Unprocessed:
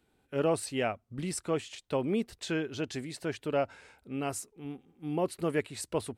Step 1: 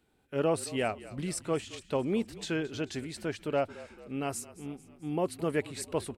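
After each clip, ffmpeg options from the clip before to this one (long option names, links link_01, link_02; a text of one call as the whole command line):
ffmpeg -i in.wav -filter_complex "[0:a]asplit=6[link_01][link_02][link_03][link_04][link_05][link_06];[link_02]adelay=220,afreqshift=-38,volume=-18dB[link_07];[link_03]adelay=440,afreqshift=-76,volume=-22.7dB[link_08];[link_04]adelay=660,afreqshift=-114,volume=-27.5dB[link_09];[link_05]adelay=880,afreqshift=-152,volume=-32.2dB[link_10];[link_06]adelay=1100,afreqshift=-190,volume=-36.9dB[link_11];[link_01][link_07][link_08][link_09][link_10][link_11]amix=inputs=6:normalize=0" out.wav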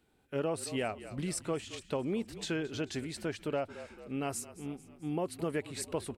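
ffmpeg -i in.wav -af "acompressor=threshold=-30dB:ratio=4" out.wav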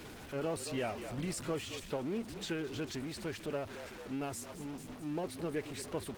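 ffmpeg -i in.wav -af "aeval=exprs='val(0)+0.5*0.0141*sgn(val(0))':channel_layout=same,highshelf=frequency=8900:gain=-6.5,volume=-4dB" -ar 48000 -c:a libopus -b:a 16k out.opus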